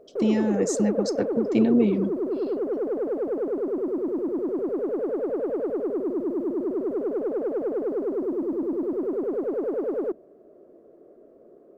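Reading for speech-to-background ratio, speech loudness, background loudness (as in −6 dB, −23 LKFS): 3.0 dB, −24.5 LKFS, −27.5 LKFS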